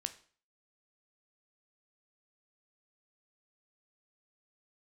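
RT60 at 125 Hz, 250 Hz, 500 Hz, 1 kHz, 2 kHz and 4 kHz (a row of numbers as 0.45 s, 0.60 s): 0.45 s, 0.45 s, 0.45 s, 0.45 s, 0.45 s, 0.40 s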